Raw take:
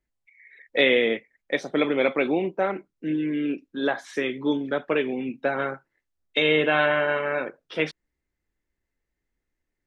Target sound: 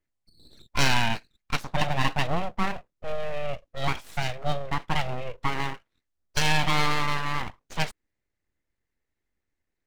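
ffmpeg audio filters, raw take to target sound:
ffmpeg -i in.wav -af "aeval=exprs='abs(val(0))':channel_layout=same" out.wav

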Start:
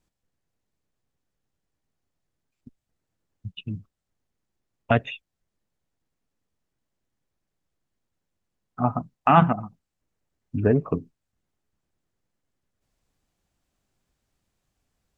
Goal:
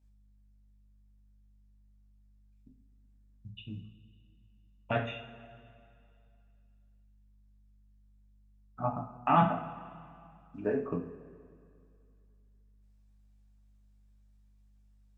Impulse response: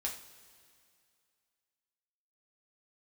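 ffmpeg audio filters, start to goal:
-filter_complex "[0:a]asettb=1/sr,asplit=3[link_01][link_02][link_03];[link_01]atrim=end=9.434[link_04];[link_02]atrim=start=9.43:end=10.85,asetpts=PTS-STARTPTS,afade=type=in:duration=0.004:curve=qsin,afade=type=out:start_time=1.416:duration=0.004:curve=qsin,highpass=270[link_05];[link_03]atrim=start=10.846[link_06];[link_04][link_05]acrossfade=duration=0.004:curve1=hsin:curve2=qsin[link_07];[link_07][link_06]acrossfade=duration=0.004:curve1=qsin:curve2=hsin,aeval=exprs='val(0)+0.00126*(sin(2*PI*50*n/s)+sin(2*PI*2*50*n/s)/2+sin(2*PI*3*50*n/s)/3+sin(2*PI*4*50*n/s)/4+sin(2*PI*5*50*n/s)/5)':channel_layout=same[link_08];[1:a]atrim=start_sample=2205[link_09];[link_08][link_09]afir=irnorm=-1:irlink=0,volume=-8.5dB"

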